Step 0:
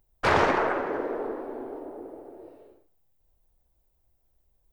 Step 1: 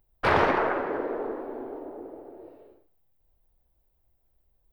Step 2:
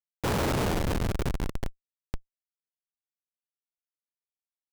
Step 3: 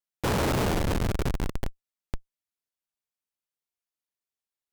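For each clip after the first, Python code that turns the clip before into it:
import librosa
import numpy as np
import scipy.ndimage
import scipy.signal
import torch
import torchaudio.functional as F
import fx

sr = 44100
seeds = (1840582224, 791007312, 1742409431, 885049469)

y1 = fx.peak_eq(x, sr, hz=7100.0, db=-11.5, octaves=0.82)
y2 = fx.bin_compress(y1, sr, power=0.4)
y2 = fx.schmitt(y2, sr, flips_db=-17.5)
y3 = fx.vibrato(y2, sr, rate_hz=1.2, depth_cents=18.0)
y3 = y3 * 10.0 ** (1.5 / 20.0)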